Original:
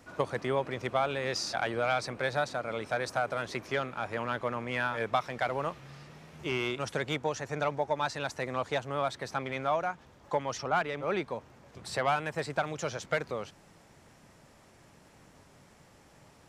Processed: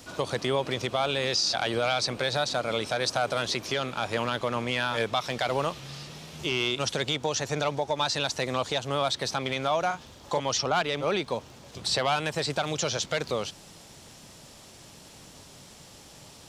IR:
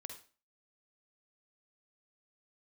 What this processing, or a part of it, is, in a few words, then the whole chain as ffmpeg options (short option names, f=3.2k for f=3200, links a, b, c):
over-bright horn tweeter: -filter_complex "[0:a]acrossover=split=7000[a][b];[b]acompressor=threshold=-59dB:ratio=4:attack=1:release=60[c];[a][c]amix=inputs=2:normalize=0,highshelf=f=2.6k:t=q:w=1.5:g=8,alimiter=limit=-23dB:level=0:latency=1:release=98,asettb=1/sr,asplit=3[d][e][f];[d]atrim=end=9.874[g];[e]atrim=start=9.87:end=10.4,asetpts=PTS-STARTPTS,afade=t=in:d=0.004:c=qsin,afade=t=out:st=0.526:d=0.004:c=qsin,asplit=2[h][i];[i]adelay=40,volume=-6.5dB[j];[h][j]amix=inputs=2:normalize=0,atrim=end_sample=23373[k];[f]atrim=start=10.396[l];[g][k]acrossfade=d=0.004:c1=hsin:c2=qsin[m];[m][l]acrossfade=d=0.004:c1=qsin:c2=hsin,volume=6.5dB"